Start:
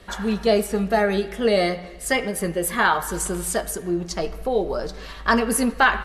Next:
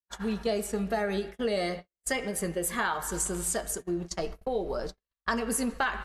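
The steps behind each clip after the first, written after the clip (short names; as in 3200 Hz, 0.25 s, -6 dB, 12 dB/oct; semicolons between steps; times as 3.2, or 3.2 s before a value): gate -29 dBFS, range -57 dB; dynamic EQ 7300 Hz, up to +7 dB, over -45 dBFS, Q 1.9; compressor 3:1, threshold -21 dBFS, peak gain reduction 7.5 dB; gain -5.5 dB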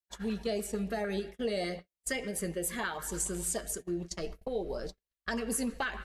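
LFO notch saw up 6.7 Hz 690–1600 Hz; gain -3 dB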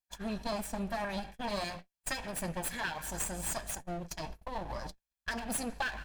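minimum comb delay 1.2 ms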